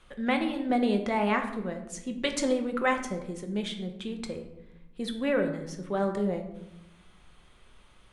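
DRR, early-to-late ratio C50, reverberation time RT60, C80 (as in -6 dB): 4.0 dB, 8.5 dB, 0.90 s, 11.0 dB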